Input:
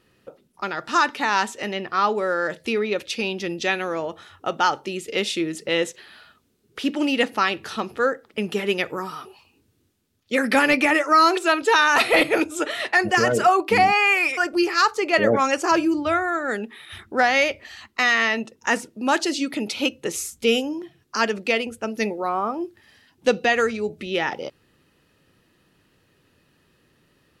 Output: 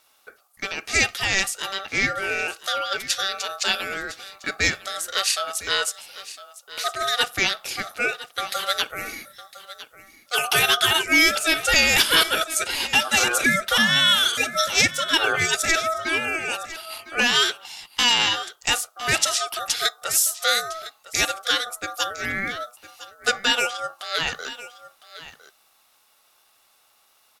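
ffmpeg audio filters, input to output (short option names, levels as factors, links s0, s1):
-af "aeval=exprs='val(0)*sin(2*PI*970*n/s)':c=same,aecho=1:1:1007:0.158,crystalizer=i=7:c=0,volume=0.562"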